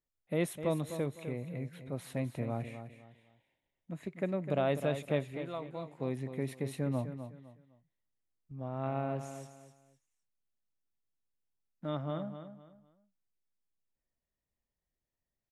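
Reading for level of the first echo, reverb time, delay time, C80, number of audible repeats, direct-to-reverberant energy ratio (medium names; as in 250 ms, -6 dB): -10.0 dB, no reverb, 254 ms, no reverb, 3, no reverb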